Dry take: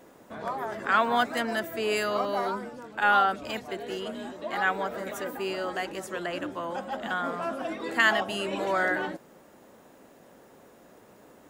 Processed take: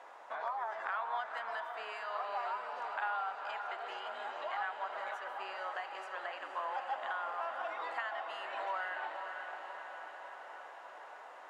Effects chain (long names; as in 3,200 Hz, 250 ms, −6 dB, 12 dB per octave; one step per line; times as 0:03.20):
spectral tilt +4 dB per octave
convolution reverb RT60 2.0 s, pre-delay 48 ms, DRR 17.5 dB
downward compressor 6 to 1, threshold −41 dBFS, peak gain reduction 24.5 dB
four-pole ladder band-pass 1,000 Hz, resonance 40%
feedback delay with all-pass diffusion 505 ms, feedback 67%, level −7 dB
level +15 dB